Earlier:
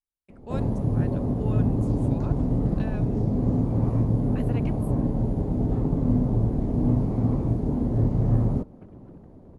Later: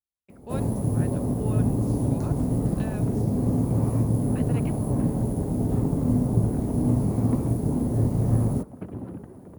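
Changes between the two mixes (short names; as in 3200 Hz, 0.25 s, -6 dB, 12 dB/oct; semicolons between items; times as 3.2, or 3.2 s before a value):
first sound: remove air absorption 150 m; second sound +12.0 dB; master: add HPF 60 Hz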